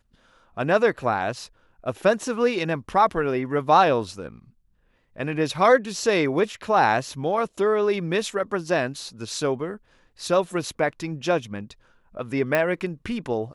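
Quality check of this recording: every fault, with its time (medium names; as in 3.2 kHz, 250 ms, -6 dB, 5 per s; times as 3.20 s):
12.55 s: pop -9 dBFS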